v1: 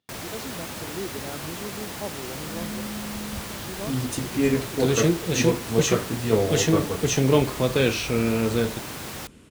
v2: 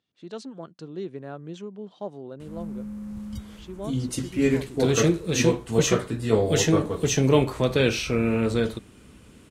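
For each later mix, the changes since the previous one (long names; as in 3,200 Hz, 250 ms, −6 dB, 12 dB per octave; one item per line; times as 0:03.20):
first sound: muted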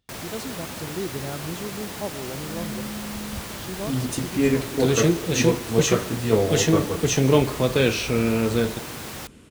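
speech: remove band-pass filter 170–6,400 Hz
first sound: unmuted
reverb: on, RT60 1.4 s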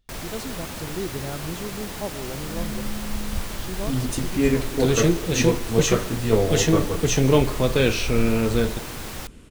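master: remove high-pass filter 86 Hz 12 dB per octave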